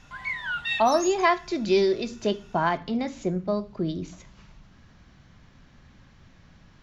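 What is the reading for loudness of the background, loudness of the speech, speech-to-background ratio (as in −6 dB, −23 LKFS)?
−30.0 LKFS, −25.5 LKFS, 4.5 dB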